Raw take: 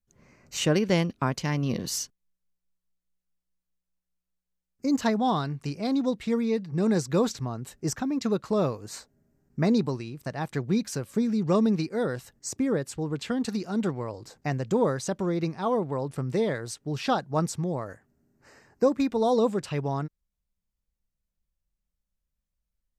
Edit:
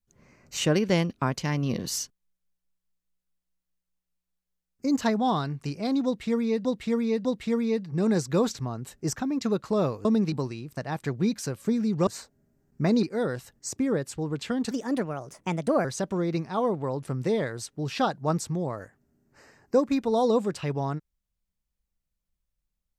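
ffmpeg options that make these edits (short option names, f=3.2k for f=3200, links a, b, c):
-filter_complex "[0:a]asplit=9[a][b][c][d][e][f][g][h][i];[a]atrim=end=6.652[j];[b]atrim=start=6.048:end=6.652[k];[c]atrim=start=6.048:end=8.852[l];[d]atrim=start=11.558:end=11.832[m];[e]atrim=start=9.808:end=11.562[n];[f]atrim=start=8.848:end=9.812[o];[g]atrim=start=11.828:end=13.514[p];[h]atrim=start=13.51:end=14.93,asetpts=PTS-STARTPTS,asetrate=55125,aresample=44100[q];[i]atrim=start=14.926[r];[j][k]acrossfade=d=0.004:c1=hsin:c2=hsin[s];[s][l]acrossfade=d=0.004:c1=hsin:c2=hsin[t];[t][m]acrossfade=d=0.004:c1=hsin:c2=hsin[u];[u][n]acrossfade=d=0.004:c1=hsin:c2=hsin[v];[v][o]acrossfade=d=0.004:c1=hsin:c2=hsin[w];[w][p]acrossfade=d=0.004:c1=hsin:c2=hsin[x];[x][q]acrossfade=d=0.004:c1=hsin:c2=hsin[y];[y][r]acrossfade=d=0.004:c1=hsin:c2=hsin"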